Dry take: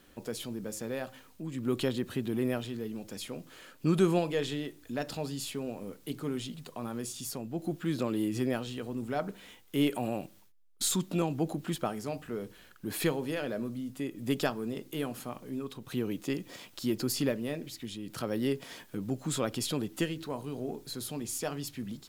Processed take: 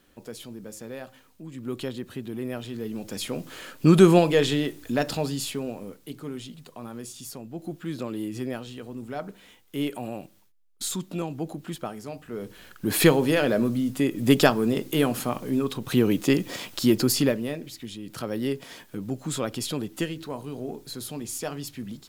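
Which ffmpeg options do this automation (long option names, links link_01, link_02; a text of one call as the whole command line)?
ffmpeg -i in.wav -af "volume=23.5dB,afade=type=in:start_time=2.49:duration=1.03:silence=0.237137,afade=type=out:start_time=4.84:duration=1.25:silence=0.266073,afade=type=in:start_time=12.26:duration=0.77:silence=0.223872,afade=type=out:start_time=16.72:duration=0.87:silence=0.334965" out.wav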